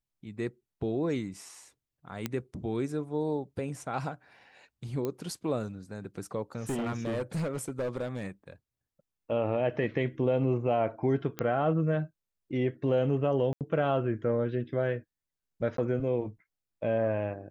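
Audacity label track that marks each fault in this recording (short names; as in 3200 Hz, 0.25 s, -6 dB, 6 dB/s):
2.260000	2.260000	pop -16 dBFS
5.050000	5.050000	pop -20 dBFS
6.600000	8.230000	clipped -28 dBFS
11.390000	11.390000	pop -17 dBFS
13.530000	13.610000	gap 78 ms
15.770000	15.780000	gap 13 ms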